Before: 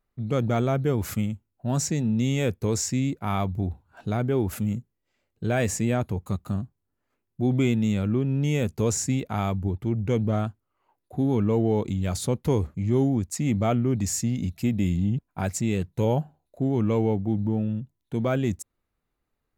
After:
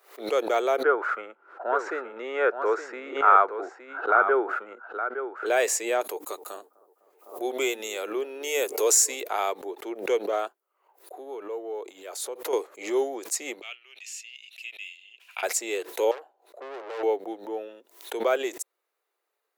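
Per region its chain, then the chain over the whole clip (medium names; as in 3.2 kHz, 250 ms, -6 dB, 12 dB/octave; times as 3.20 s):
0.83–5.46 s: resonant low-pass 1.4 kHz, resonance Q 8.6 + delay 866 ms -9.5 dB
6.01–9.26 s: treble shelf 7.8 kHz +11 dB + hum notches 60/120/180/240/300 Hz + bucket-brigade echo 253 ms, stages 2048, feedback 71%, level -23 dB
10.48–12.53 s: peaking EQ 4.5 kHz -4.5 dB 2.5 oct + compression 2.5:1, threshold -33 dBFS
13.61–15.43 s: band-pass filter 2.7 kHz, Q 7.1 + tilt EQ +3.5 dB/octave
16.11–17.03 s: treble shelf 5.2 kHz -8 dB + valve stage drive 35 dB, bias 0.45 + tape noise reduction on one side only decoder only
whole clip: steep high-pass 380 Hz 48 dB/octave; treble shelf 11 kHz +4 dB; swell ahead of each attack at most 130 dB/s; trim +3.5 dB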